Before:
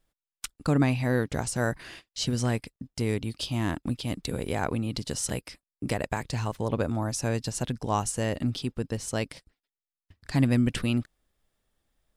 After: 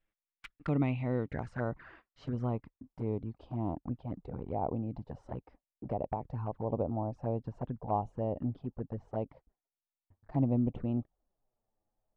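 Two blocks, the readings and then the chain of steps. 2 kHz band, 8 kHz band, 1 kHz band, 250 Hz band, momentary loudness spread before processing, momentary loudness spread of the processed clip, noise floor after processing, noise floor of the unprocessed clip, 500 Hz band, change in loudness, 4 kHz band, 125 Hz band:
-15.5 dB, under -40 dB, -4.5 dB, -6.5 dB, 12 LU, 14 LU, under -85 dBFS, under -85 dBFS, -5.0 dB, -7.0 dB, under -25 dB, -6.5 dB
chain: low-pass sweep 2400 Hz -> 800 Hz, 0.08–3.61; envelope flanger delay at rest 9.6 ms, full sweep at -22.5 dBFS; gain -6.5 dB

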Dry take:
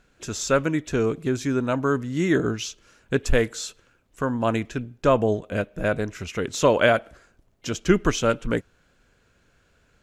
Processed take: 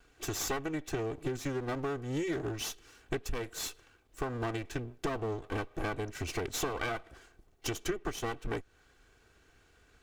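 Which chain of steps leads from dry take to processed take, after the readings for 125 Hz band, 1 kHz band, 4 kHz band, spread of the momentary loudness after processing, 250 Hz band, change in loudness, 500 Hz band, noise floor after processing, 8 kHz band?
-11.0 dB, -11.0 dB, -8.0 dB, 6 LU, -13.0 dB, -12.5 dB, -14.0 dB, -66 dBFS, -6.5 dB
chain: minimum comb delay 2.6 ms; compressor 10:1, threshold -31 dBFS, peak gain reduction 18.5 dB

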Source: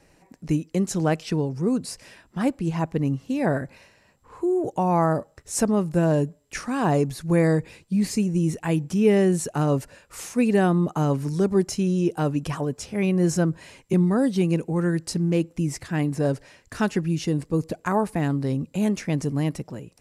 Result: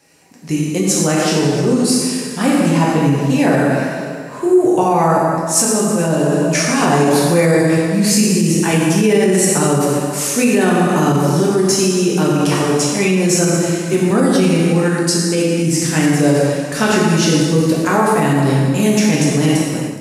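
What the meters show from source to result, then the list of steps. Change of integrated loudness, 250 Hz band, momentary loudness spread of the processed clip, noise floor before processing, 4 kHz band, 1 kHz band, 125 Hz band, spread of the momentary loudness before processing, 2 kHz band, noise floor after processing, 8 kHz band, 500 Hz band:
+9.5 dB, +9.0 dB, 4 LU, -60 dBFS, +17.0 dB, +11.0 dB, +7.5 dB, 8 LU, +13.5 dB, -24 dBFS, +18.0 dB, +10.0 dB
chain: plate-style reverb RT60 2 s, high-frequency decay 0.8×, DRR -5.5 dB; limiter -10.5 dBFS, peak gain reduction 9 dB; HPF 130 Hz; high shelf 2400 Hz +9.5 dB; AGC; gain -1 dB

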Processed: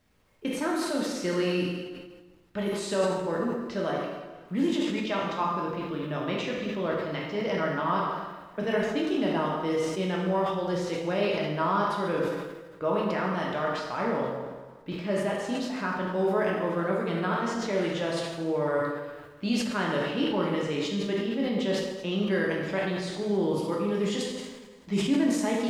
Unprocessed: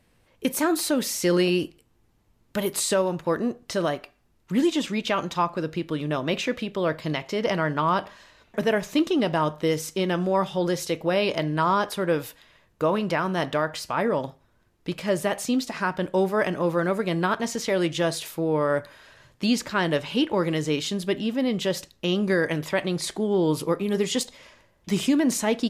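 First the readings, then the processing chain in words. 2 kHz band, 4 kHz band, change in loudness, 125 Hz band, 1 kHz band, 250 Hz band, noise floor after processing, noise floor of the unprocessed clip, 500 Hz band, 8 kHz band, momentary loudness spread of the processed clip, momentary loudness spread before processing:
-3.5 dB, -5.5 dB, -3.5 dB, -3.5 dB, -3.0 dB, -3.5 dB, -50 dBFS, -64 dBFS, -3.0 dB, -10.0 dB, 7 LU, 6 LU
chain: low-pass opened by the level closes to 3000 Hz, open at -17.5 dBFS; high shelf 4800 Hz -7.5 dB; bit-crush 11-bit; plate-style reverb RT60 1.4 s, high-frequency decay 0.85×, DRR -3 dB; sustainer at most 47 dB/s; gain -8 dB

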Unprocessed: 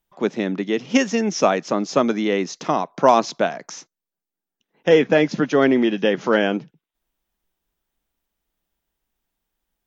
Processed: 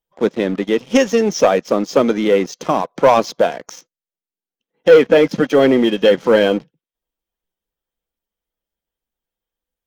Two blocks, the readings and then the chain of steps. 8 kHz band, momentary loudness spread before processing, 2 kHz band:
n/a, 9 LU, +2.0 dB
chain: bin magnitudes rounded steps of 15 dB; small resonant body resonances 500/3200 Hz, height 9 dB, ringing for 35 ms; sample leveller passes 2; gain -4 dB

